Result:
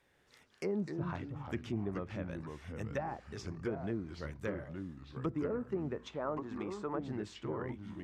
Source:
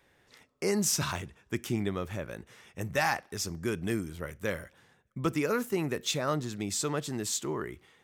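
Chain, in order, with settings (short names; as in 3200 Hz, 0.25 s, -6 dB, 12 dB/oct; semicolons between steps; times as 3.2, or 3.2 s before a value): treble ducked by the level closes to 680 Hz, closed at -25.5 dBFS; echoes that change speed 0.137 s, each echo -3 st, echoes 3, each echo -6 dB; 5.96–6.99 graphic EQ 125/1000/4000 Hz -10/+6/-4 dB; gain -6 dB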